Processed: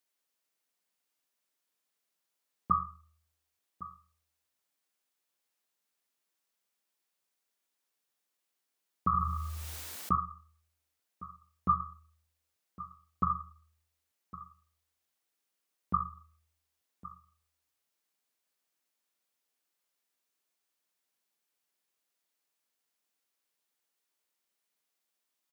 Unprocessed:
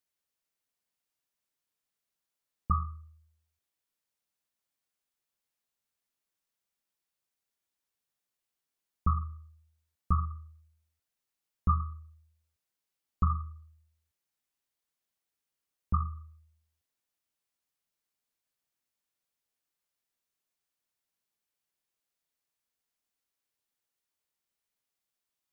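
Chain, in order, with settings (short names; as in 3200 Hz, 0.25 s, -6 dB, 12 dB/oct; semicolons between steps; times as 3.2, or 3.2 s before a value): HPF 210 Hz 12 dB/oct; echo 1.109 s -16.5 dB; 9.13–10.16 fast leveller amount 70%; gain +3.5 dB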